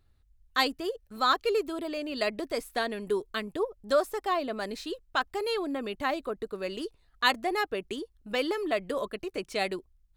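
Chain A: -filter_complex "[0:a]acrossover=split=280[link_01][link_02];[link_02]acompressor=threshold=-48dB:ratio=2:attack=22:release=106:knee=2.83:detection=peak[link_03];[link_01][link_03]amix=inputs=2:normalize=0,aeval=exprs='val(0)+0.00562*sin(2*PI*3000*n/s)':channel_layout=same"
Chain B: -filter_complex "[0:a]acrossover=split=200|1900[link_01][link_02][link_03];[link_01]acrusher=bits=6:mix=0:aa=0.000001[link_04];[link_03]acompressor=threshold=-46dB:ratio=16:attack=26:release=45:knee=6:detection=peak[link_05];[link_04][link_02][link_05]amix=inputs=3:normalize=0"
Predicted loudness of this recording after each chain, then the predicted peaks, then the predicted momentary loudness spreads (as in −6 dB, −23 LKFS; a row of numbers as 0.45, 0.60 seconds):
−38.0, −32.0 LKFS; −20.0, −12.5 dBFS; 4, 9 LU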